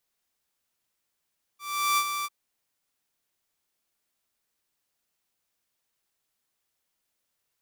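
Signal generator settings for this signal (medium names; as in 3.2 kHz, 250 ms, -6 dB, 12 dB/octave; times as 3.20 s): ADSR saw 1.17 kHz, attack 385 ms, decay 61 ms, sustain -8 dB, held 0.66 s, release 37 ms -18 dBFS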